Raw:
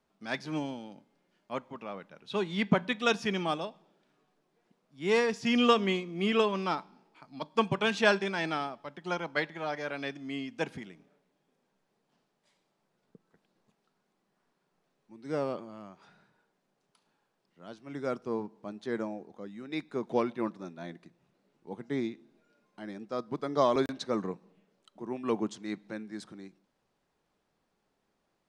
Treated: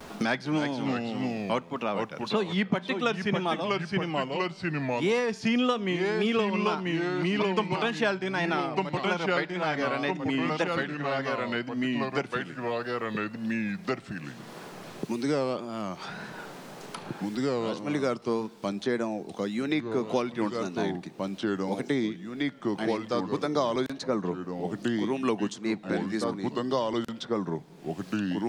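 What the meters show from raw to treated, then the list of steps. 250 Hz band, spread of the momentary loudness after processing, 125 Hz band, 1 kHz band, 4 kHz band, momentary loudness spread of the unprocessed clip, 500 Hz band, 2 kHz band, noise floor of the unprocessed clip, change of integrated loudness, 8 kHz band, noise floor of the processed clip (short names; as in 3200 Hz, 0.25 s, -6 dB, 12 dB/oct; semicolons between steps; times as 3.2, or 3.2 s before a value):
+6.5 dB, 8 LU, +7.5 dB, +4.0 dB, +3.0 dB, 19 LU, +4.0 dB, +4.0 dB, -78 dBFS, +2.5 dB, +4.5 dB, -45 dBFS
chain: echoes that change speed 0.268 s, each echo -2 st, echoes 2, each echo -6 dB; vibrato 1.8 Hz 84 cents; three-band squash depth 100%; gain +3.5 dB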